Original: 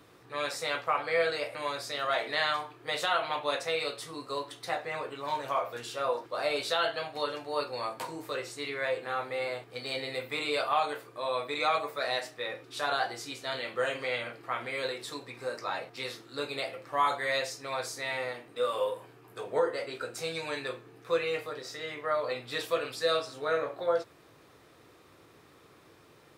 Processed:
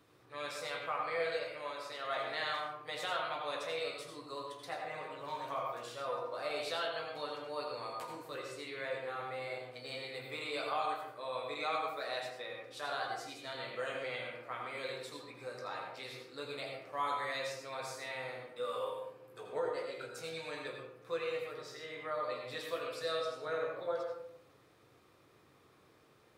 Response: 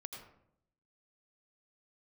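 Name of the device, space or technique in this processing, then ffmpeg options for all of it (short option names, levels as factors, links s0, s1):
bathroom: -filter_complex "[0:a]asettb=1/sr,asplit=3[s0][s1][s2];[s0]atrim=end=1.394[s3];[s1]atrim=start=1.39:end=2.05,asetpts=PTS-STARTPTS,afade=t=in:d=0.004:c=qsin,afade=t=out:st=0.656:d=0.004:c=qsin,bass=f=250:g=-8,treble=f=4000:g=-5[s4];[s2]atrim=start=2.046[s5];[s3][s4]acrossfade=d=0.004:c1=hsin:c2=qsin[s6];[s6][s5]acrossfade=d=0.004:c1=qsin:c2=hsin[s7];[1:a]atrim=start_sample=2205[s8];[s7][s8]afir=irnorm=-1:irlink=0,volume=0.631"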